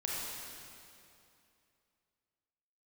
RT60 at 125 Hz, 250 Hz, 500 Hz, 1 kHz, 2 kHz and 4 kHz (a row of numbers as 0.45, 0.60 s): 2.7, 2.8, 2.7, 2.6, 2.5, 2.3 s